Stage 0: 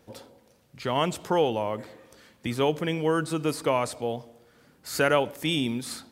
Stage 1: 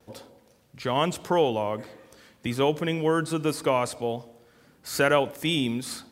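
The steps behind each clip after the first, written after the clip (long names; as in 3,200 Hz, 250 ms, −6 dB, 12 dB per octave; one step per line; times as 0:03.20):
noise gate with hold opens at −53 dBFS
level +1 dB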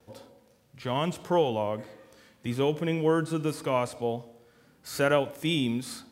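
harmonic and percussive parts rebalanced percussive −8 dB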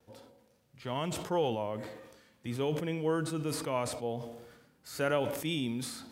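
level that may fall only so fast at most 52 dB per second
level −6.5 dB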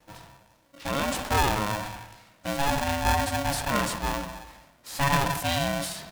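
far-end echo of a speakerphone 130 ms, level −11 dB
ring modulator with a square carrier 420 Hz
level +6.5 dB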